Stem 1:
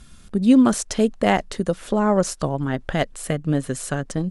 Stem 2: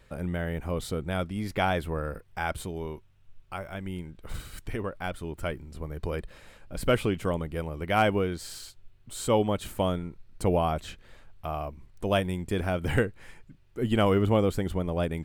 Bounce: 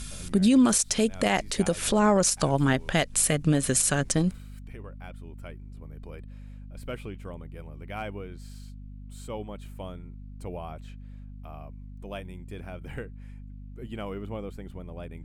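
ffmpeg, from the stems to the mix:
-filter_complex "[0:a]highshelf=f=2800:g=12,volume=1.41[s0];[1:a]adynamicequalizer=threshold=0.00708:dfrequency=2700:dqfactor=0.7:tfrequency=2700:tqfactor=0.7:attack=5:release=100:ratio=0.375:range=2:mode=cutabove:tftype=highshelf,volume=0.224[s1];[s0][s1]amix=inputs=2:normalize=0,equalizer=f=2400:w=7:g=5,aeval=exprs='val(0)+0.00891*(sin(2*PI*50*n/s)+sin(2*PI*2*50*n/s)/2+sin(2*PI*3*50*n/s)/3+sin(2*PI*4*50*n/s)/4+sin(2*PI*5*50*n/s)/5)':c=same,alimiter=limit=0.237:level=0:latency=1:release=171"

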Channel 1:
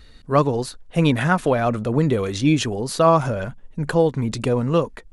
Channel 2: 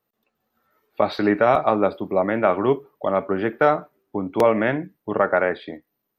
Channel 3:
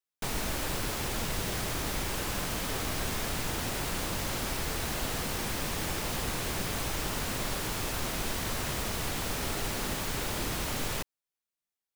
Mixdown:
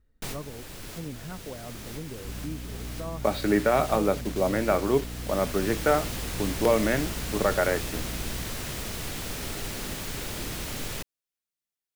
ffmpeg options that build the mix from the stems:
-filter_complex "[0:a]lowpass=1300,volume=0.106,asplit=2[s0][s1];[1:a]acrusher=bits=5:mix=0:aa=0.000001,aeval=exprs='val(0)+0.0224*(sin(2*PI*60*n/s)+sin(2*PI*2*60*n/s)/2+sin(2*PI*3*60*n/s)/3+sin(2*PI*4*60*n/s)/4+sin(2*PI*5*60*n/s)/5)':c=same,adelay=2250,volume=0.708[s2];[2:a]volume=0.944[s3];[s1]apad=whole_len=527096[s4];[s3][s4]sidechaincompress=threshold=0.00794:ratio=6:attack=16:release=1340[s5];[s0][s2][s5]amix=inputs=3:normalize=0,equalizer=f=950:w=1.1:g=-5"

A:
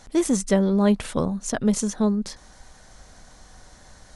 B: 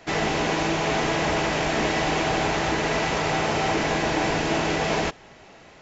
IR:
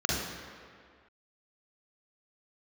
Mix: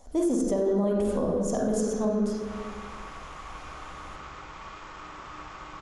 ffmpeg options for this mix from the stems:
-filter_complex "[0:a]equalizer=f=125:t=o:w=1:g=-4,equalizer=f=250:t=o:w=1:g=10,equalizer=f=500:t=o:w=1:g=8,equalizer=f=2000:t=o:w=1:g=-10,equalizer=f=4000:t=o:w=1:g=-9,equalizer=f=8000:t=o:w=1:g=-5,volume=0.944,asplit=3[s0][s1][s2];[s1]volume=0.266[s3];[1:a]equalizer=f=720:w=0.73:g=11.5,aeval=exprs='val(0)*sin(2*PI*470*n/s)':c=same,adelay=1700,volume=0.106,asplit=2[s4][s5];[s5]volume=0.106[s6];[s2]apad=whole_len=331530[s7];[s4][s7]sidechaincompress=threshold=0.0251:ratio=8:attack=16:release=270[s8];[2:a]atrim=start_sample=2205[s9];[s3][s6]amix=inputs=2:normalize=0[s10];[s10][s9]afir=irnorm=-1:irlink=0[s11];[s0][s8][s11]amix=inputs=3:normalize=0,equalizer=f=200:w=0.59:g=-14.5,alimiter=limit=0.126:level=0:latency=1:release=57"

